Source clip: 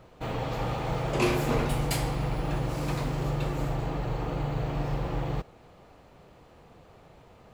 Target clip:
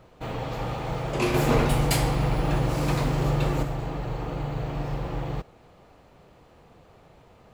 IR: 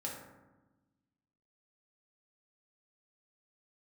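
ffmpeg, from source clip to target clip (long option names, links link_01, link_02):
-filter_complex "[0:a]asettb=1/sr,asplit=3[link_01][link_02][link_03];[link_01]atrim=end=1.344[link_04];[link_02]atrim=start=1.34:end=3.63,asetpts=PTS-STARTPTS,afade=type=in:duration=0.004:curve=qsin,afade=type=out:start_time=2.286:duration=0.004:curve=qsin,acontrast=35[link_05];[link_03]atrim=start=3.626[link_06];[link_04][link_05]acrossfade=duration=0.004:curve1=hsin:curve2=qsin[link_07];[link_07][link_06]acrossfade=duration=0.004:curve1=qsin:curve2=hsin"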